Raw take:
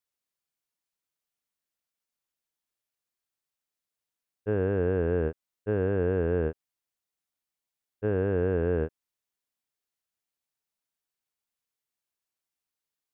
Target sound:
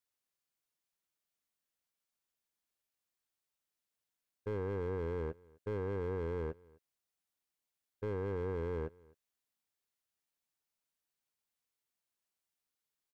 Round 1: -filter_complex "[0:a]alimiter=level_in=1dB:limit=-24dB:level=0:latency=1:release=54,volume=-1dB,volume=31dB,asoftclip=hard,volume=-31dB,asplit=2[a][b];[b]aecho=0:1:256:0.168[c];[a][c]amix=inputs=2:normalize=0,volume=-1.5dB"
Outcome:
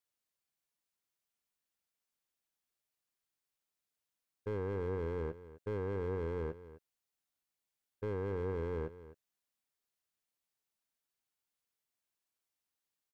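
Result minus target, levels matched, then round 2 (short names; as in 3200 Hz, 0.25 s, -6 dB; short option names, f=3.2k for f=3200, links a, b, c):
echo-to-direct +9.5 dB
-filter_complex "[0:a]alimiter=level_in=1dB:limit=-24dB:level=0:latency=1:release=54,volume=-1dB,volume=31dB,asoftclip=hard,volume=-31dB,asplit=2[a][b];[b]aecho=0:1:256:0.0562[c];[a][c]amix=inputs=2:normalize=0,volume=-1.5dB"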